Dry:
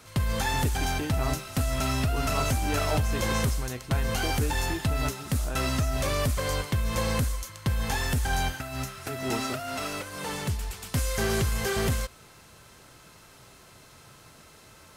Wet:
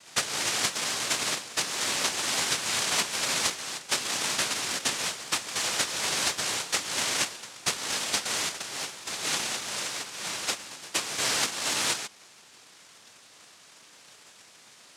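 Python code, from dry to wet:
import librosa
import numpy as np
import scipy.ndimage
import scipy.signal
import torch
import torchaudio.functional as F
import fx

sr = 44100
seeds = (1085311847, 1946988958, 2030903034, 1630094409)

y = fx.noise_vocoder(x, sr, seeds[0], bands=1)
y = fx.low_shelf(y, sr, hz=240.0, db=-3.5)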